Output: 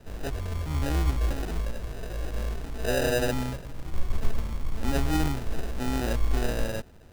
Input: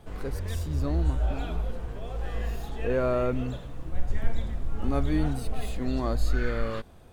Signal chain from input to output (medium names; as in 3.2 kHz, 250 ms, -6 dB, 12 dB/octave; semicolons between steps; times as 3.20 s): sample-and-hold 40×